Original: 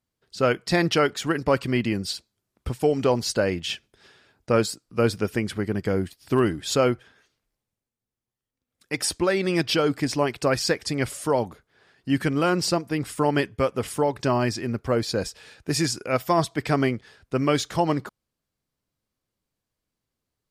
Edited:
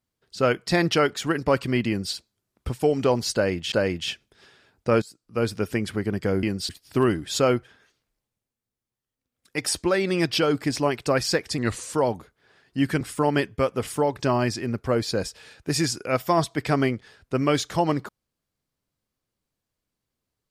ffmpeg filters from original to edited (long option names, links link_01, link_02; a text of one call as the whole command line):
ffmpeg -i in.wav -filter_complex "[0:a]asplit=8[link_01][link_02][link_03][link_04][link_05][link_06][link_07][link_08];[link_01]atrim=end=3.722[link_09];[link_02]atrim=start=3.338:end=4.64,asetpts=PTS-STARTPTS,afade=type=out:start_time=1.298:duration=0.004:curve=hsin:silence=0.105925[link_10];[link_03]atrim=start=4.64:end=6.052,asetpts=PTS-STARTPTS,afade=type=in:duration=0.87:curve=qsin:silence=0.105925[link_11];[link_04]atrim=start=1.878:end=2.142[link_12];[link_05]atrim=start=6.048:end=10.944[link_13];[link_06]atrim=start=10.94:end=11.25,asetpts=PTS-STARTPTS,asetrate=38367,aresample=44100[link_14];[link_07]atrim=start=11.246:end=12.322[link_15];[link_08]atrim=start=13.008[link_16];[link_10][link_11]concat=n=2:v=0:a=1[link_17];[link_09][link_17]acrossfade=duration=0.004:curve1=hsin:curve2=hsin[link_18];[link_18][link_12]acrossfade=duration=0.004:curve1=hsin:curve2=hsin[link_19];[link_19][link_13]acrossfade=duration=0.004:curve1=hsin:curve2=hsin[link_20];[link_20][link_14]acrossfade=duration=0.004:curve1=hsin:curve2=hsin[link_21];[link_21][link_15]acrossfade=duration=0.004:curve1=hsin:curve2=hsin[link_22];[link_22][link_16]acrossfade=duration=0.004:curve1=hsin:curve2=hsin" out.wav